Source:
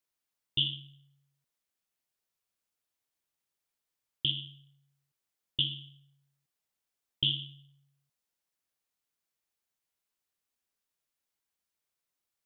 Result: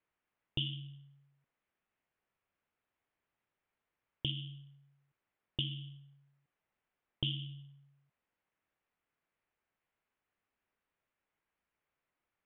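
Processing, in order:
low-pass filter 2,500 Hz 24 dB per octave
downward compressor 2 to 1, threshold −43 dBFS, peak gain reduction 7.5 dB
level +6.5 dB

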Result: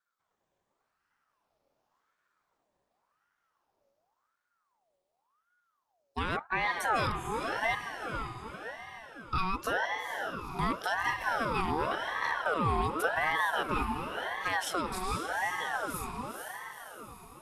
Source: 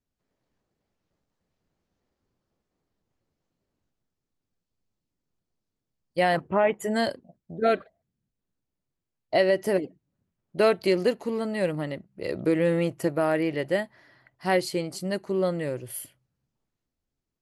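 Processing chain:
rippled gain that drifts along the octave scale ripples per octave 0.73, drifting +0.51 Hz, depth 9 dB
brickwall limiter −19.5 dBFS, peak gain reduction 10.5 dB
0:14.95–0:15.75: phaser with its sweep stopped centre 950 Hz, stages 6
on a send: feedback delay with all-pass diffusion 473 ms, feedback 56%, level −4.5 dB
on the sum: ring modulator whose carrier an LFO sweeps 1,000 Hz, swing 45%, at 0.9 Hz

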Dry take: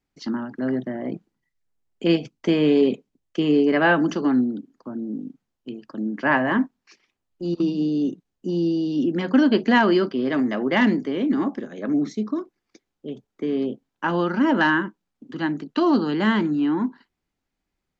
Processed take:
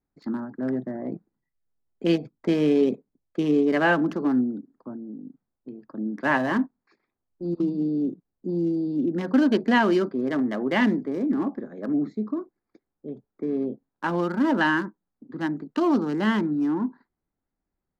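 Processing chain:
adaptive Wiener filter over 15 samples
0:04.93–0:05.91: downward compressor, threshold −32 dBFS, peak gain reduction 6.5 dB
level −2.5 dB

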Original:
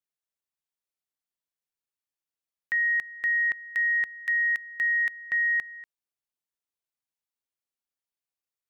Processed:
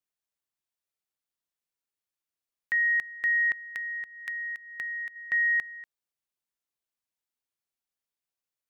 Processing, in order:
0:03.58–0:05.16: downward compressor, threshold −34 dBFS, peak gain reduction 10 dB

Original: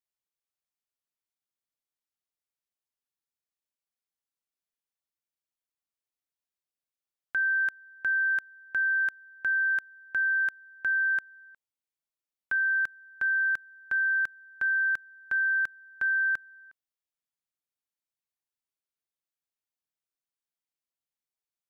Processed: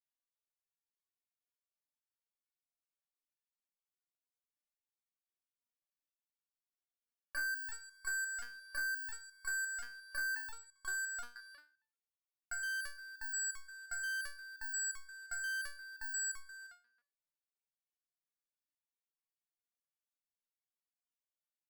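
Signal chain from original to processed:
0:10.36–0:11.36: low-pass filter 1,500 Hz 24 dB per octave
in parallel at −6.5 dB: fuzz pedal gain 48 dB, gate −54 dBFS
on the sum: far-end echo of a speakerphone 270 ms, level −26 dB
step-sequenced resonator 5.7 Hz 240–1,100 Hz
level +5 dB

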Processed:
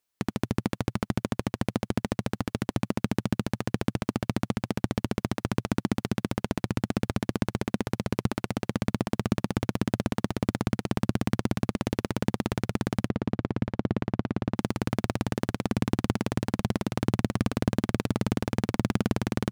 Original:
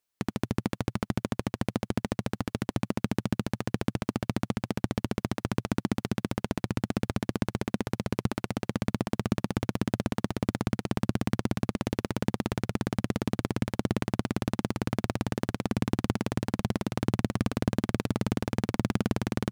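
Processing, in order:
0:13.08–0:14.56: head-to-tape spacing loss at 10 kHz 23 dB
level +1.5 dB

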